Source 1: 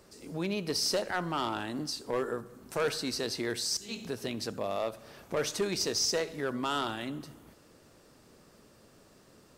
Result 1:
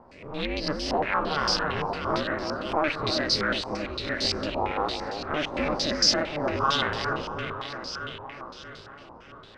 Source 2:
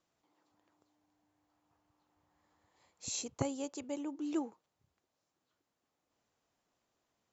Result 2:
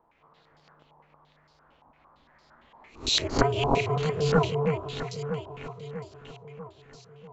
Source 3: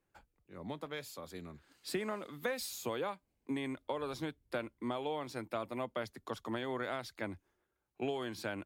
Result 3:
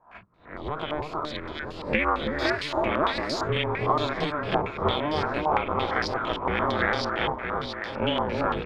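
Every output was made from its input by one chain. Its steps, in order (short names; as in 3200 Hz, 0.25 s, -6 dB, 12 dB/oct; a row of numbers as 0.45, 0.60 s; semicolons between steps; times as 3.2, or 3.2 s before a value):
spectral swells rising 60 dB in 0.34 s; notch 580 Hz, Q 12; in parallel at -3 dB: hard clip -30 dBFS; on the sum: ring modulator 150 Hz; on a send: echo with dull and thin repeats by turns 0.321 s, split 1200 Hz, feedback 72%, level -3 dB; on the sum: stepped low-pass 8.8 Hz 930–4800 Hz; match loudness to -27 LUFS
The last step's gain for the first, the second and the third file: +0.5, +9.5, +7.0 dB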